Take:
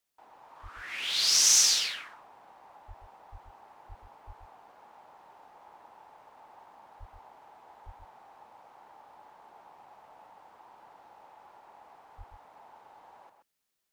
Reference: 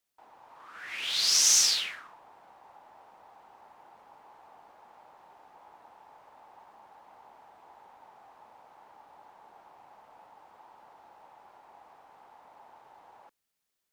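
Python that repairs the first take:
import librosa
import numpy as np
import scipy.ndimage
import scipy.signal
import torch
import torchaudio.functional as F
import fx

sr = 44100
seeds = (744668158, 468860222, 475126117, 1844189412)

y = fx.fix_deplosive(x, sr, at_s=(0.62, 2.87, 3.31, 3.88, 4.26, 6.99, 7.85, 12.17))
y = fx.fix_echo_inverse(y, sr, delay_ms=130, level_db=-7.5)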